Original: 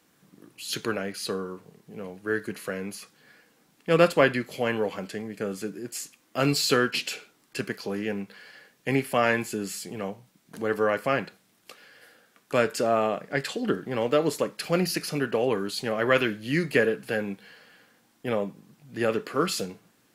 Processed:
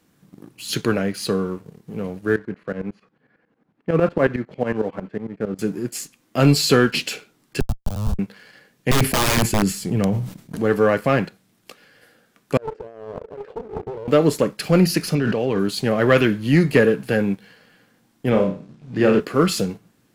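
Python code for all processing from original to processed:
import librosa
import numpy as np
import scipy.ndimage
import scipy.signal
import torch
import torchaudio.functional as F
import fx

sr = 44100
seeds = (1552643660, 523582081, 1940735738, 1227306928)

y = fx.chain(x, sr, fx.lowpass(hz=1700.0, slope=12),
    fx.low_shelf(hz=87.0, db=-11.5),
    fx.tremolo_shape(shape='saw_up', hz=11.0, depth_pct=85), at=(2.36, 5.59))
y = fx.chain(y, sr, fx.schmitt(flips_db=-25.5),
    fx.fixed_phaser(hz=840.0, stages=4),
    fx.band_squash(depth_pct=100), at=(7.6, 8.19))
y = fx.chain(y, sr, fx.low_shelf(hz=160.0, db=11.0),
    fx.overflow_wrap(gain_db=19.0),
    fx.sustainer(db_per_s=75.0), at=(8.91, 10.57))
y = fx.chain(y, sr, fx.over_compress(threshold_db=-33.0, ratio=-1.0),
    fx.ladder_bandpass(hz=470.0, resonance_pct=70),
    fx.doppler_dist(depth_ms=0.72), at=(12.57, 14.08))
y = fx.chain(y, sr, fx.ladder_lowpass(hz=6400.0, resonance_pct=35),
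    fx.env_flatten(amount_pct=100), at=(15.15, 15.59))
y = fx.chain(y, sr, fx.lowpass(hz=5400.0, slope=12),
    fx.room_flutter(wall_m=5.4, rt60_s=0.38), at=(18.3, 19.2))
y = fx.low_shelf(y, sr, hz=280.0, db=11.5)
y = fx.leveller(y, sr, passes=1)
y = y * librosa.db_to_amplitude(1.0)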